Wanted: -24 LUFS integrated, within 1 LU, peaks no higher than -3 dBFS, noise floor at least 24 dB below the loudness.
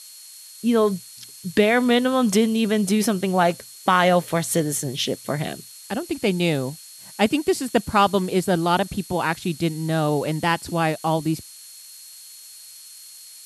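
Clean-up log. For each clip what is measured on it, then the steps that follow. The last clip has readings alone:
steady tone 4.3 kHz; tone level -47 dBFS; noise floor -43 dBFS; noise floor target -46 dBFS; loudness -22.0 LUFS; peak level -5.5 dBFS; loudness target -24.0 LUFS
-> band-stop 4.3 kHz, Q 30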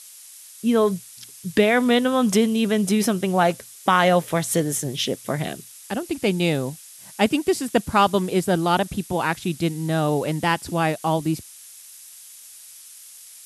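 steady tone not found; noise floor -44 dBFS; noise floor target -46 dBFS
-> noise print and reduce 6 dB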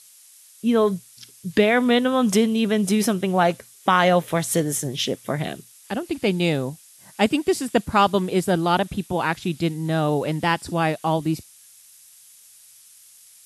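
noise floor -50 dBFS; loudness -22.0 LUFS; peak level -5.5 dBFS; loudness target -24.0 LUFS
-> trim -2 dB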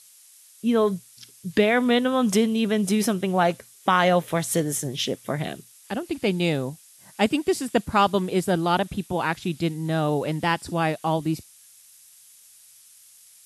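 loudness -24.0 LUFS; peak level -7.5 dBFS; noise floor -52 dBFS

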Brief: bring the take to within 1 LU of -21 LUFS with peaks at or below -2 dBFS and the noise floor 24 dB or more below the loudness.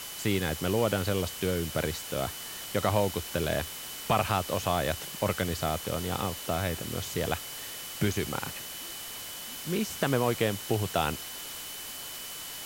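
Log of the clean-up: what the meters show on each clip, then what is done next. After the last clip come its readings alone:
steady tone 3 kHz; tone level -46 dBFS; noise floor -41 dBFS; noise floor target -55 dBFS; loudness -31.0 LUFS; peak level -11.5 dBFS; loudness target -21.0 LUFS
-> band-stop 3 kHz, Q 30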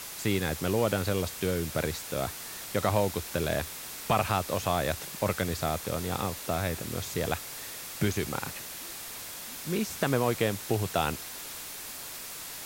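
steady tone not found; noise floor -41 dBFS; noise floor target -55 dBFS
-> noise reduction 14 dB, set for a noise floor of -41 dBFS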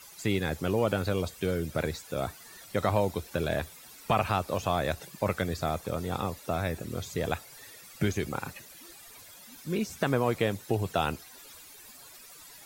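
noise floor -51 dBFS; noise floor target -55 dBFS
-> noise reduction 6 dB, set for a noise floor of -51 dBFS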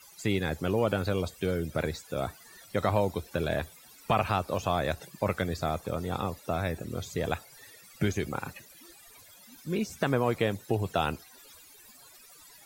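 noise floor -54 dBFS; noise floor target -55 dBFS
-> noise reduction 6 dB, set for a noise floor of -54 dBFS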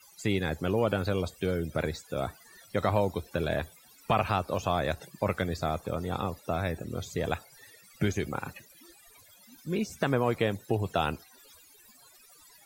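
noise floor -57 dBFS; loudness -31.0 LUFS; peak level -12.5 dBFS; loudness target -21.0 LUFS
-> trim +10 dB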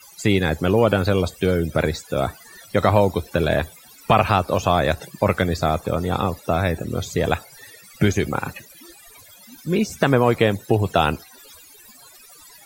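loudness -21.0 LUFS; peak level -2.5 dBFS; noise floor -47 dBFS

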